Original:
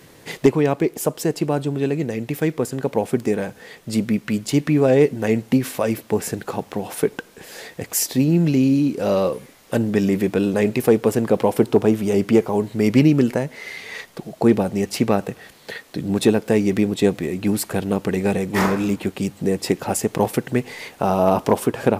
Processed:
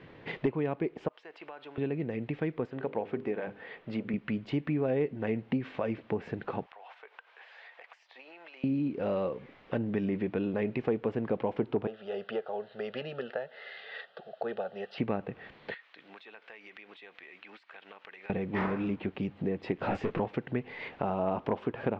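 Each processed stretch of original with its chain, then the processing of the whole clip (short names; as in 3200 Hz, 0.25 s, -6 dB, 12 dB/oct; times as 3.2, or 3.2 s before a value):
1.08–1.78 HPF 940 Hz + compressor, threshold -36 dBFS
2.67–4.14 block floating point 7-bit + tone controls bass -7 dB, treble -5 dB + notches 50/100/150/200/250/300/350/400/450/500 Hz
6.66–8.64 HPF 730 Hz 24 dB/oct + compressor 4:1, threshold -43 dBFS
11.87–14.98 HPF 440 Hz + high shelf 9300 Hz +12 dB + fixed phaser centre 1500 Hz, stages 8
15.74–18.3 HPF 1400 Hz + compressor 8:1, threshold -40 dBFS
19.78–20.2 sample leveller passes 3 + detuned doubles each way 50 cents
whole clip: compressor 2:1, threshold -30 dBFS; inverse Chebyshev low-pass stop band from 11000 Hz, stop band 70 dB; gain -4 dB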